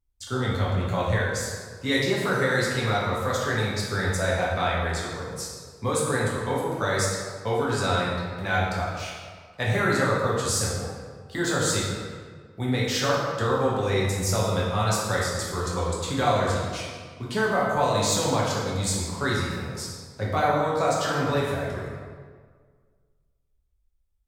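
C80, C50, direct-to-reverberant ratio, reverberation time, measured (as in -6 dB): 2.0 dB, 0.0 dB, -6.0 dB, 1.7 s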